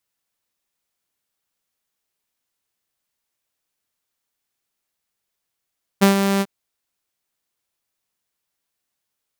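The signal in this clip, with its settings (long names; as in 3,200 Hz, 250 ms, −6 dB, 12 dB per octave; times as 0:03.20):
note with an ADSR envelope saw 197 Hz, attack 19 ms, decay 116 ms, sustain −7.5 dB, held 0.40 s, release 45 ms −6.5 dBFS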